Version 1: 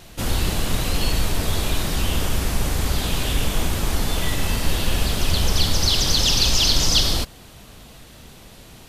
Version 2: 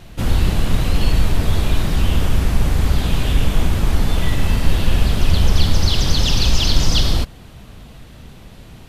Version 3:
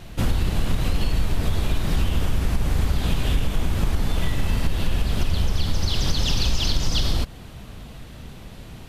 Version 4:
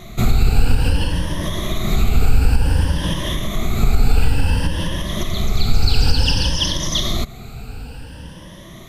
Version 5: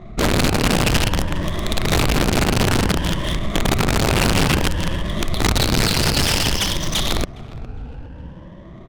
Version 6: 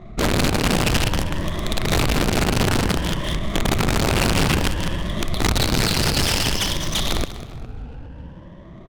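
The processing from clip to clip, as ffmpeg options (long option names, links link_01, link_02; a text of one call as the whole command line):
ffmpeg -i in.wav -af "bass=frequency=250:gain=6,treble=frequency=4000:gain=-7,volume=1dB" out.wav
ffmpeg -i in.wav -af "acompressor=threshold=-16dB:ratio=6" out.wav
ffmpeg -i in.wav -af "afftfilt=real='re*pow(10,15/40*sin(2*PI*(1.2*log(max(b,1)*sr/1024/100)/log(2)-(0.56)*(pts-256)/sr)))':imag='im*pow(10,15/40*sin(2*PI*(1.2*log(max(b,1)*sr/1024/100)/log(2)-(0.56)*(pts-256)/sr)))':win_size=1024:overlap=0.75,volume=2.5dB" out.wav
ffmpeg -i in.wav -af "aeval=exprs='(mod(3.76*val(0)+1,2)-1)/3.76':channel_layout=same,aecho=1:1:410|820|1230:0.141|0.0537|0.0204,adynamicsmooth=sensitivity=4:basefreq=860" out.wav
ffmpeg -i in.wav -af "aecho=1:1:194|388|582:0.2|0.0479|0.0115,volume=-2dB" out.wav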